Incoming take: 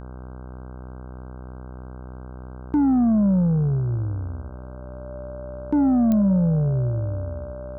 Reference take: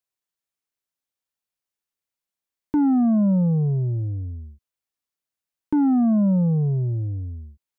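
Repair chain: de-click; de-hum 63.2 Hz, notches 25; band-stop 590 Hz, Q 30

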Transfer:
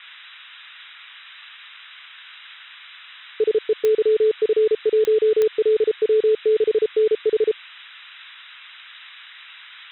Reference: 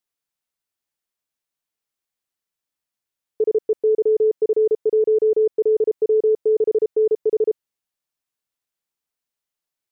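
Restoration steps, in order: de-click; noise print and reduce 30 dB

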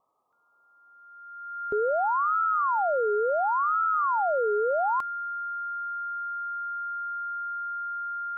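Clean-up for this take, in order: band-stop 1.4 kHz, Q 30; noise print and reduce 17 dB

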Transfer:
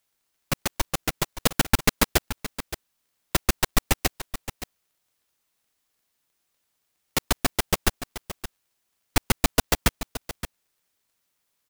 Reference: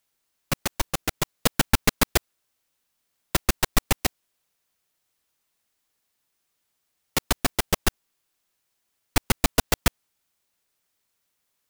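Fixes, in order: de-click; inverse comb 571 ms -12.5 dB

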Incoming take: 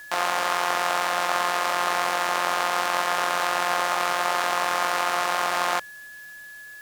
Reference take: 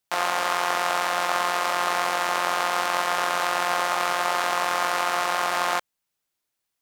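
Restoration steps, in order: band-stop 1.7 kHz, Q 30; expander -34 dBFS, range -21 dB

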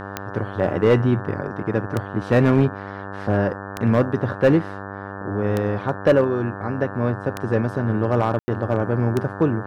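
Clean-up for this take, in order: clip repair -9 dBFS; de-click; de-hum 98.6 Hz, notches 18; room tone fill 8.39–8.48 s

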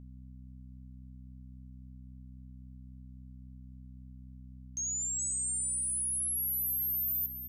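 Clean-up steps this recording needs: de-hum 63.7 Hz, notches 4; inverse comb 416 ms -9.5 dB

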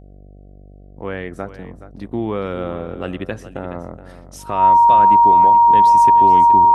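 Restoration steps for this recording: de-hum 48.7 Hz, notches 15; band-stop 940 Hz, Q 30; inverse comb 422 ms -13.5 dB

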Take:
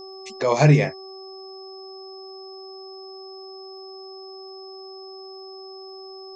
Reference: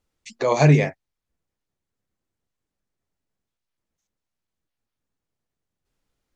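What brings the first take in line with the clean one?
de-click; de-hum 382.4 Hz, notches 3; band-stop 5.2 kHz, Q 30

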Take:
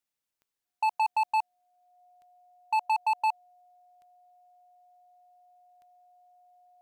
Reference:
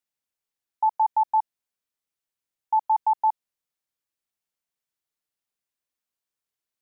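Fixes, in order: clip repair -22.5 dBFS; de-click; band-stop 720 Hz, Q 30

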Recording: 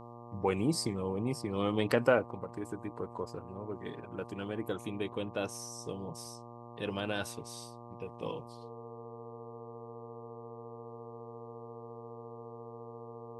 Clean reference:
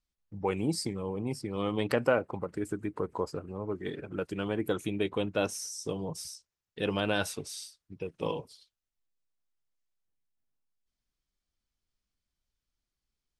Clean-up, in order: de-hum 118.6 Hz, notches 10; band-stop 460 Hz, Q 30; gain correction +6 dB, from 2.26 s

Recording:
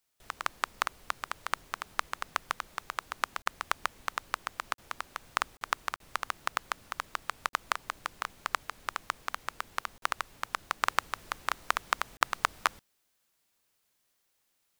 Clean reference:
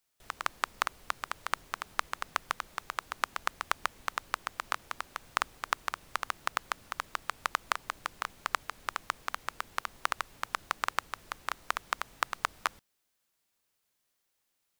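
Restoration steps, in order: interpolate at 3.42/4.74/5.57/5.96/7.49/9.98/12.17 s, 42 ms; gain correction -3.5 dB, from 10.83 s

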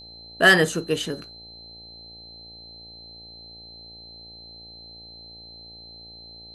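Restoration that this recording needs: clip repair -5.5 dBFS; de-hum 57.2 Hz, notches 15; band-stop 4.1 kHz, Q 30

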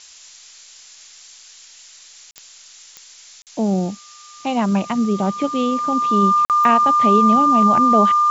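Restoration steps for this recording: de-click; band-stop 1.2 kHz, Q 30; interpolate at 2.31/3.42/6.45 s, 48 ms; noise print and reduce 18 dB

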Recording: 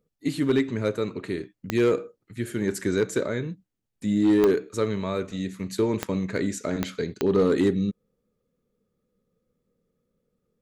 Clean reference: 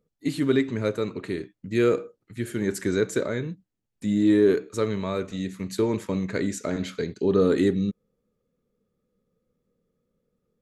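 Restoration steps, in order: clip repair -14.5 dBFS; de-click

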